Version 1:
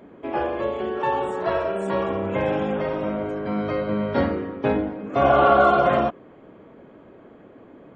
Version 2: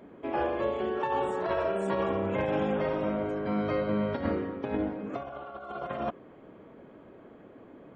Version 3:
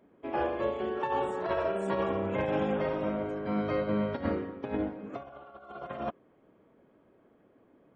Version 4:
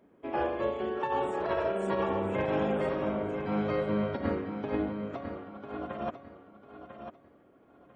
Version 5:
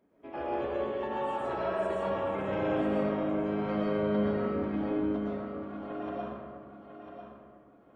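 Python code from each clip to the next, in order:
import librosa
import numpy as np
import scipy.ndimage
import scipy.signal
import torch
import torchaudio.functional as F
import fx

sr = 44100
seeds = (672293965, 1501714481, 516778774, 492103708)

y1 = fx.over_compress(x, sr, threshold_db=-23.0, ratio=-0.5)
y1 = y1 * librosa.db_to_amplitude(-6.0)
y2 = fx.upward_expand(y1, sr, threshold_db=-50.0, expansion=1.5)
y3 = fx.echo_feedback(y2, sr, ms=997, feedback_pct=26, wet_db=-9)
y4 = fx.rev_freeverb(y3, sr, rt60_s=1.8, hf_ratio=0.5, predelay_ms=80, drr_db=-6.0)
y4 = y4 * librosa.db_to_amplitude(-8.0)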